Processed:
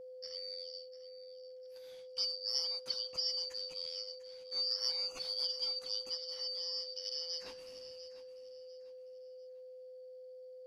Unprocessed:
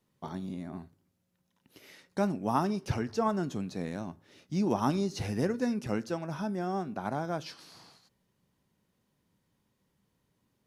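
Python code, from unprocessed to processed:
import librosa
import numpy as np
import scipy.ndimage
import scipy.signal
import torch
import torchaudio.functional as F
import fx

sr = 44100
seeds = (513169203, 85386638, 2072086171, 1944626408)

y = fx.band_shuffle(x, sr, order='4321')
y = y + 10.0 ** (-39.0 / 20.0) * np.sin(2.0 * np.pi * 510.0 * np.arange(len(y)) / sr)
y = fx.echo_feedback(y, sr, ms=697, feedback_pct=33, wet_db=-14.0)
y = y * librosa.db_to_amplitude(-8.0)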